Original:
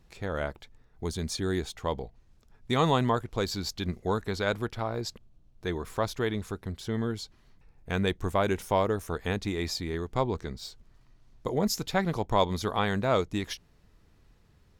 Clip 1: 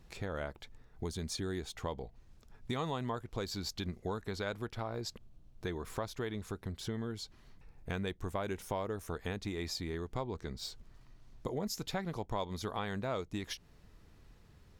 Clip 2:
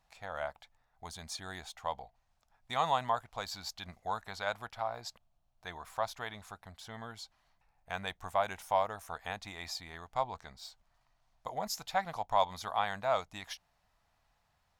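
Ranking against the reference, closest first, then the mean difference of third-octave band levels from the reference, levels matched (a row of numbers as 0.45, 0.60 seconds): 1, 2; 3.0, 5.5 decibels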